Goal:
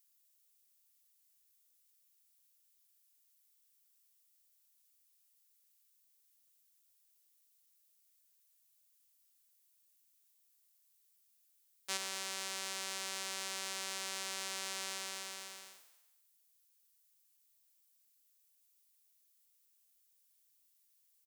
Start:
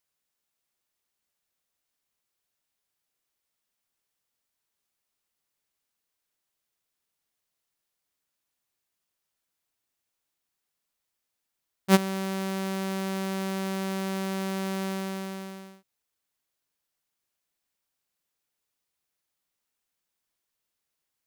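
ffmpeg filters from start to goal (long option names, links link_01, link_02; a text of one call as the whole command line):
ffmpeg -i in.wav -filter_complex "[0:a]aderivative,asoftclip=type=tanh:threshold=-15.5dB,highpass=250,asplit=2[link_01][link_02];[link_02]asplit=5[link_03][link_04][link_05][link_06][link_07];[link_03]adelay=108,afreqshift=84,volume=-13.5dB[link_08];[link_04]adelay=216,afreqshift=168,volume=-18.9dB[link_09];[link_05]adelay=324,afreqshift=252,volume=-24.2dB[link_10];[link_06]adelay=432,afreqshift=336,volume=-29.6dB[link_11];[link_07]adelay=540,afreqshift=420,volume=-34.9dB[link_12];[link_08][link_09][link_10][link_11][link_12]amix=inputs=5:normalize=0[link_13];[link_01][link_13]amix=inputs=2:normalize=0,acrossover=split=8800[link_14][link_15];[link_15]acompressor=threshold=-60dB:ratio=4:attack=1:release=60[link_16];[link_14][link_16]amix=inputs=2:normalize=0,volume=7dB" out.wav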